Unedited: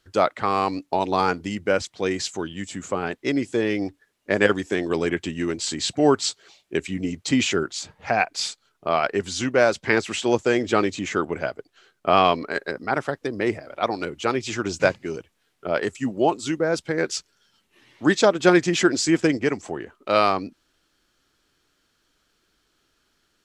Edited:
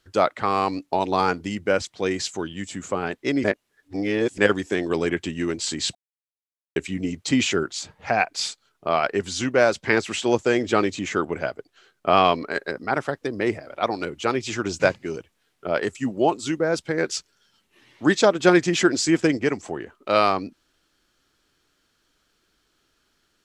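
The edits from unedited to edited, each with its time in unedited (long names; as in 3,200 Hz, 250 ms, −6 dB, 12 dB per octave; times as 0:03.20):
0:03.44–0:04.38: reverse
0:05.95–0:06.76: silence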